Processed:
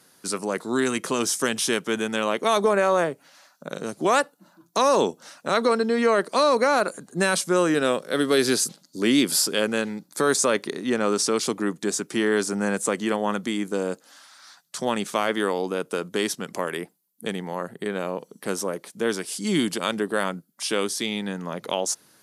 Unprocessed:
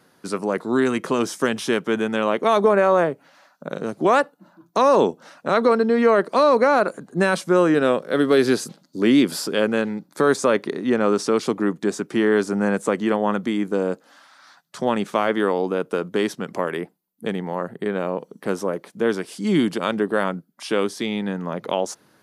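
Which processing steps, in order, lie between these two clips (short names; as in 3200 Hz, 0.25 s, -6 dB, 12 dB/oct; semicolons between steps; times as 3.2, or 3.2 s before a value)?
bell 9400 Hz +14.5 dB 2.5 oct; gain -4.5 dB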